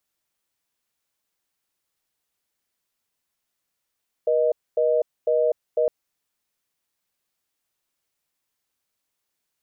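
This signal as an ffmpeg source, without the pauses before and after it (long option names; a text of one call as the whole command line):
ffmpeg -f lavfi -i "aevalsrc='0.1*(sin(2*PI*480*t)+sin(2*PI*620*t))*clip(min(mod(t,0.5),0.25-mod(t,0.5))/0.005,0,1)':duration=1.61:sample_rate=44100" out.wav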